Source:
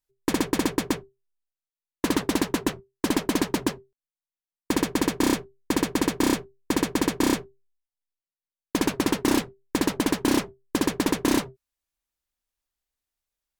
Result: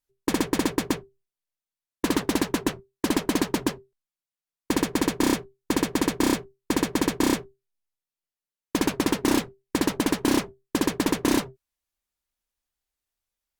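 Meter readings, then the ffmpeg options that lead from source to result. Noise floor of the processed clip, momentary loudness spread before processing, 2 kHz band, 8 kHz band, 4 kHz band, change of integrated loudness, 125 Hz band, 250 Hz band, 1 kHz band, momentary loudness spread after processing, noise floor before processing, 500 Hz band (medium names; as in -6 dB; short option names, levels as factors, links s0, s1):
under -85 dBFS, 8 LU, 0.0 dB, 0.0 dB, 0.0 dB, 0.0 dB, 0.0 dB, 0.0 dB, 0.0 dB, 8 LU, under -85 dBFS, 0.0 dB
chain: -ar 48000 -c:a libopus -b:a 64k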